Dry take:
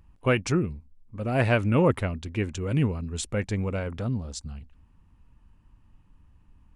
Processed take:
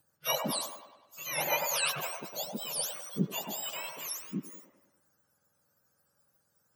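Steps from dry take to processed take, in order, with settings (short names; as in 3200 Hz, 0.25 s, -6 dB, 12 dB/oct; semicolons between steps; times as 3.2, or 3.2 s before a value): spectrum mirrored in octaves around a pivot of 1200 Hz; band-limited delay 0.1 s, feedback 55%, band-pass 990 Hz, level -3 dB; gain -4 dB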